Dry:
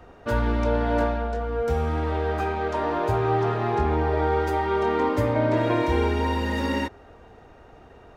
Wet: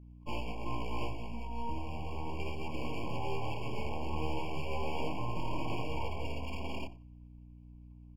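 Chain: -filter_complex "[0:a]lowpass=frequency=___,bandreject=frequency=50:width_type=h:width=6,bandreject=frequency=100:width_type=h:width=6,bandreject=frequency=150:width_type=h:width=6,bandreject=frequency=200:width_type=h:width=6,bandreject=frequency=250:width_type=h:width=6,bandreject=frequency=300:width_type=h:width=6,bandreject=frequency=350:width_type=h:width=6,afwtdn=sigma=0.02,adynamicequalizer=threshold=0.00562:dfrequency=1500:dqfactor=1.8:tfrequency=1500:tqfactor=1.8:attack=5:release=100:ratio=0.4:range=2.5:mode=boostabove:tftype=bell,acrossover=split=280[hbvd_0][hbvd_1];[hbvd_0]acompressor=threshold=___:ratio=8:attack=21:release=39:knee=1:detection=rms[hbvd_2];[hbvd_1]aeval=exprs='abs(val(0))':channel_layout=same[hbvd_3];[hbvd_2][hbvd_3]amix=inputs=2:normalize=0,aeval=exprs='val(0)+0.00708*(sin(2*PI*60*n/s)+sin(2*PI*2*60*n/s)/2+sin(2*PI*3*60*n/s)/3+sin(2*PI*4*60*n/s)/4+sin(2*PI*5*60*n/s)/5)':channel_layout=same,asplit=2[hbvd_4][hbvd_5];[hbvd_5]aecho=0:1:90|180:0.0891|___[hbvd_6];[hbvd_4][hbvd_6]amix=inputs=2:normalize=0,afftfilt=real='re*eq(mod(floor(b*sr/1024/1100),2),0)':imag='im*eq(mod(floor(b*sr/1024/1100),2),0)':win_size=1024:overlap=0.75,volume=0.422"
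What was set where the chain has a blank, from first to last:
2100, 0.0158, 0.0187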